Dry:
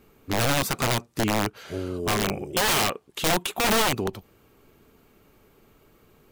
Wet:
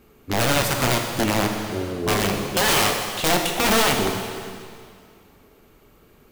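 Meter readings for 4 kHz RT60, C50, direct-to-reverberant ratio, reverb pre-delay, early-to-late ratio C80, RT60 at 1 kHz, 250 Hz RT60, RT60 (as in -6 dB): 2.0 s, 4.0 dB, 2.5 dB, 4 ms, 5.5 dB, 2.2 s, 2.2 s, 2.2 s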